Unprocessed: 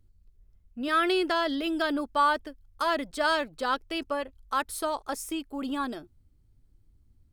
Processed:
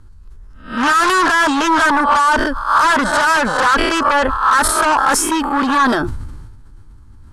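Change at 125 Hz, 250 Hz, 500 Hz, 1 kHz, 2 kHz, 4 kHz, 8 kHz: no reading, +12.5 dB, +9.5 dB, +16.5 dB, +17.5 dB, +12.0 dB, +21.0 dB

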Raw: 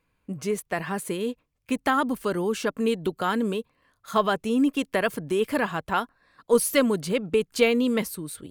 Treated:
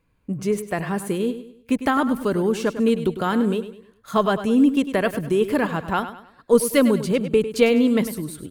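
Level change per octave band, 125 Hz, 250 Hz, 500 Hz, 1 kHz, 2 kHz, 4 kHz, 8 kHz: +7.0 dB, +6.0 dB, +4.0 dB, +2.0 dB, +1.0 dB, +0.5 dB, +0.5 dB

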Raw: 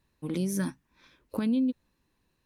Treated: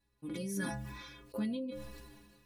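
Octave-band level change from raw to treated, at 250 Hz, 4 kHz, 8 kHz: -9.5 dB, -2.5 dB, -5.5 dB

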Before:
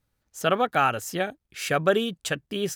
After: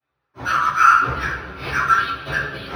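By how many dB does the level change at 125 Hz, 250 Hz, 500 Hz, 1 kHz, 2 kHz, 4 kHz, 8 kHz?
+3.0 dB, -5.0 dB, -10.0 dB, +10.0 dB, +10.0 dB, -0.5 dB, -2.5 dB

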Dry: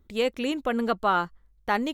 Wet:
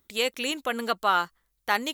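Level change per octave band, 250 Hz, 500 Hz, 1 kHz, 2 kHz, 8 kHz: -7.0 dB, -3.5 dB, 0.0 dB, +3.0 dB, no reading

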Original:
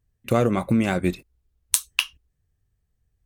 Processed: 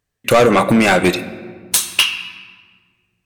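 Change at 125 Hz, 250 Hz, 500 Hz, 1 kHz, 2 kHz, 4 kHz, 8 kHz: +3.0 dB, +6.5 dB, +11.0 dB, +13.0 dB, +12.5 dB, +12.0 dB, +7.0 dB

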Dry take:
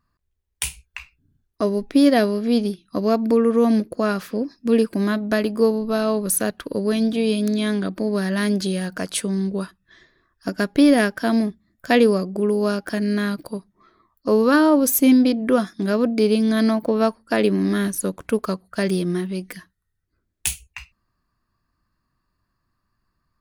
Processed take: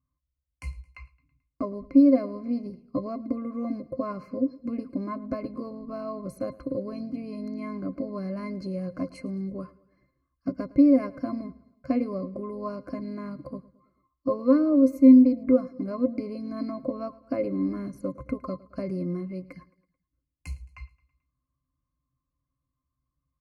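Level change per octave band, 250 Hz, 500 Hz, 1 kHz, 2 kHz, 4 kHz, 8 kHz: -4.5 dB, -10.0 dB, -12.0 dB, under -20 dB, under -20 dB, under -30 dB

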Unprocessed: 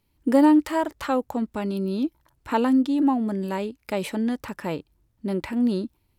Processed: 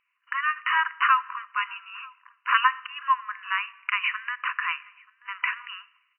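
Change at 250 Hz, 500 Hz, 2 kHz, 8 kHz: under -40 dB, under -40 dB, +12.5 dB, no reading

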